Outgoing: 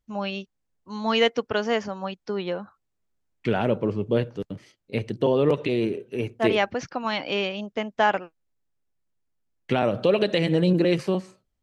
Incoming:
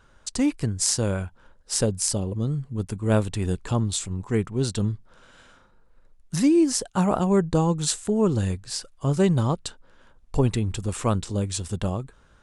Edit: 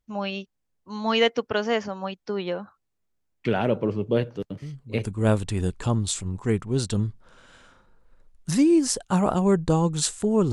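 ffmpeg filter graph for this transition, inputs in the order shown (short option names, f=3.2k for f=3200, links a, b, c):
-filter_complex "[1:a]asplit=2[a][b];[0:a]apad=whole_dur=10.52,atrim=end=10.52,atrim=end=5.052[c];[b]atrim=start=2.898:end=8.37[d];[a]atrim=start=2.47:end=2.9,asetpts=PTS-STARTPTS,volume=-9.5dB,afade=t=in:d=0.004:c=hsin,afade=t=out:st=0.426:d=0.004:c=hsin,adelay=4620[e];[c][d]acrossfade=d=0.004:c1=hsin:c2=hsin[f];[f][e]amix=inputs=2:normalize=0"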